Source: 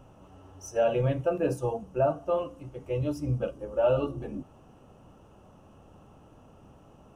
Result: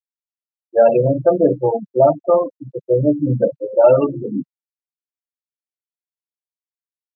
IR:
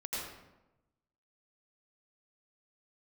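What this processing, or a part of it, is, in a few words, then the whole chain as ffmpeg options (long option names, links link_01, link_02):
Bluetooth headset: -filter_complex "[0:a]asettb=1/sr,asplit=3[link_01][link_02][link_03];[link_01]atrim=end=1.044[link_04];[link_02]atrim=start=1.04:end=2.89,asetpts=PTS-STARTPTS,afade=type=in:duration=0.004:curve=qsin,afade=type=out:start_time=1.846:duration=0.004:curve=qsin,equalizer=frequency=2800:width=0.87:gain=-5.5[link_05];[link_03]atrim=start=2.886[link_06];[link_04][link_05]acrossfade=duration=0.004:curve1=hsin:curve2=qsin[link_07];[link_07][link_06]acrossfade=duration=0.004:curve1=qsin:curve2=hsin,asplit=2[link_08][link_09];[link_09]adelay=215.7,volume=-26dB,highshelf=frequency=4000:gain=-4.85[link_10];[link_08][link_10]amix=inputs=2:normalize=0,afftfilt=real='re*gte(hypot(re,im),0.0501)':imag='im*gte(hypot(re,im),0.0501)':win_size=1024:overlap=0.75,highpass=frequency=150:width=0.5412,highpass=frequency=150:width=1.3066,dynaudnorm=framelen=100:gausssize=7:maxgain=16.5dB,aresample=8000,aresample=44100" -ar 16000 -c:a sbc -b:a 64k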